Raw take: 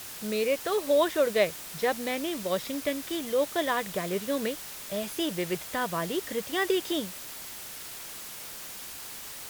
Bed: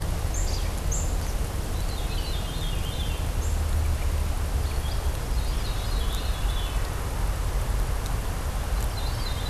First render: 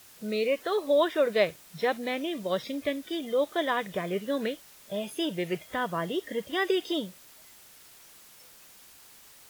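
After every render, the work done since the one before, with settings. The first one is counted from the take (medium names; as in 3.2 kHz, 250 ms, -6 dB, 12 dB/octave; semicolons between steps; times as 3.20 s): noise print and reduce 12 dB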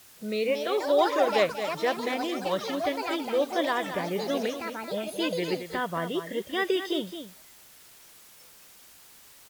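ever faster or slower copies 307 ms, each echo +5 st, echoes 3, each echo -6 dB; delay 222 ms -9.5 dB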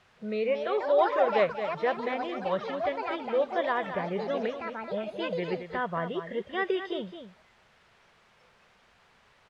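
low-pass 2.2 kHz 12 dB/octave; peaking EQ 300 Hz -13.5 dB 0.28 oct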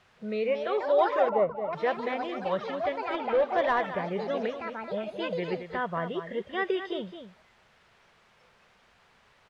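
1.29–1.73 s: Savitzky-Golay filter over 65 samples; 3.14–3.86 s: overdrive pedal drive 14 dB, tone 1.6 kHz, clips at -15 dBFS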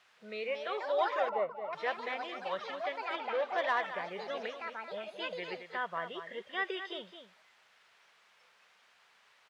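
high-pass 1.4 kHz 6 dB/octave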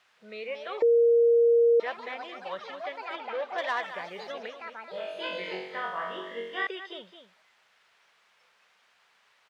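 0.82–1.80 s: bleep 468 Hz -17 dBFS; 3.58–4.32 s: treble shelf 3.7 kHz +8.5 dB; 4.91–6.67 s: flutter echo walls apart 3.7 m, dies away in 0.69 s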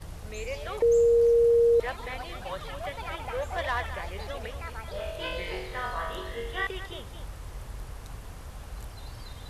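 add bed -13.5 dB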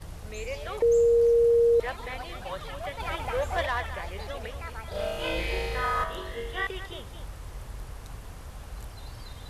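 3.00–3.66 s: gain +3.5 dB; 4.88–6.04 s: flutter echo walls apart 6.3 m, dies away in 1.3 s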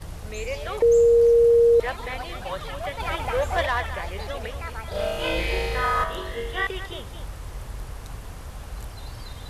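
trim +4.5 dB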